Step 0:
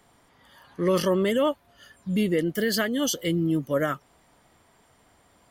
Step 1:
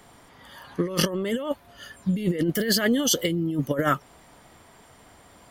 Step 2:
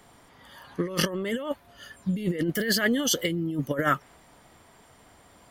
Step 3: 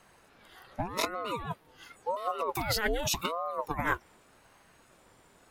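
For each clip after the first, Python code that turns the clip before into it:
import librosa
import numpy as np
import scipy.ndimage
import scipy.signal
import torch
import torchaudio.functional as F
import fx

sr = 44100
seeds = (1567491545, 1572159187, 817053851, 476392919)

y1 = fx.over_compress(x, sr, threshold_db=-27.0, ratio=-0.5)
y1 = y1 * librosa.db_to_amplitude(4.0)
y2 = fx.dynamic_eq(y1, sr, hz=1800.0, q=1.5, threshold_db=-42.0, ratio=4.0, max_db=5)
y2 = y2 * librosa.db_to_amplitude(-3.0)
y3 = fx.ring_lfo(y2, sr, carrier_hz=550.0, swing_pct=65, hz=0.87)
y3 = y3 * librosa.db_to_amplitude(-2.5)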